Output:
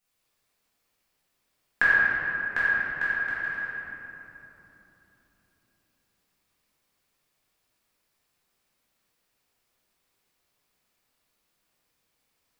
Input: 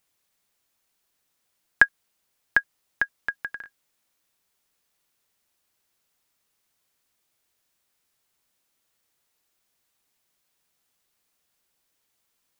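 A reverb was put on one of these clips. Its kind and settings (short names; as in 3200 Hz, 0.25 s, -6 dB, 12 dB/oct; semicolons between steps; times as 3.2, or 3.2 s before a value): shoebox room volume 210 m³, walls hard, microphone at 1.9 m; gain -9.5 dB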